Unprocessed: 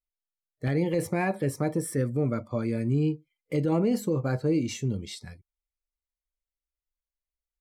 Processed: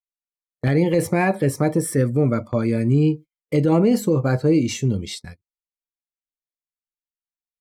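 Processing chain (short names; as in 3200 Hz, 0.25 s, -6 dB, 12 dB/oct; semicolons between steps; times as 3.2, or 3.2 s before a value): gate -41 dBFS, range -29 dB; gain +8 dB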